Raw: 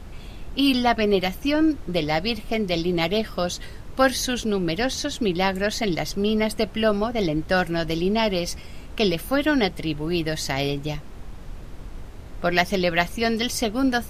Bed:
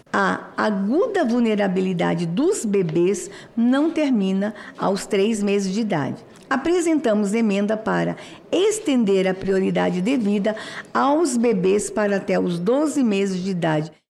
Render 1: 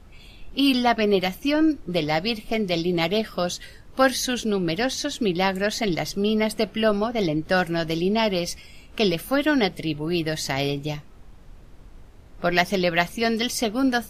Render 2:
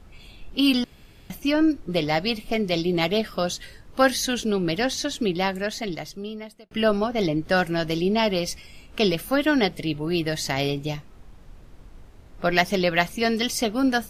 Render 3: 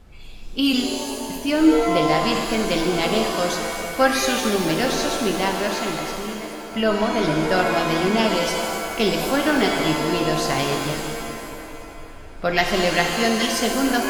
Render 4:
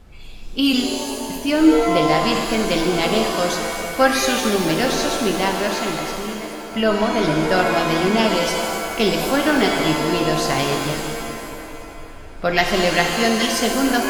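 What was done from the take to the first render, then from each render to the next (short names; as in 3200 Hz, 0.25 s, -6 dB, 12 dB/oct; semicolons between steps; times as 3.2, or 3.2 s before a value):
noise print and reduce 9 dB
0.84–1.3 room tone; 5.09–6.71 fade out
on a send: tape echo 0.219 s, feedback 81%, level -12 dB, low-pass 4500 Hz; on the sum: shimmer reverb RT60 1.6 s, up +7 st, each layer -2 dB, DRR 3.5 dB
gain +2 dB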